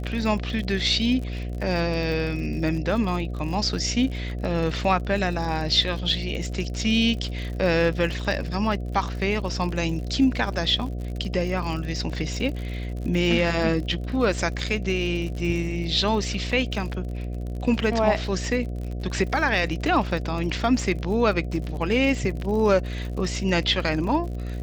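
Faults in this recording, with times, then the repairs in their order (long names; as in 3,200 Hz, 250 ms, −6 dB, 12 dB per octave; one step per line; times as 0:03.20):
mains buzz 60 Hz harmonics 12 −30 dBFS
surface crackle 56 per second −32 dBFS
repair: click removal
hum removal 60 Hz, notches 12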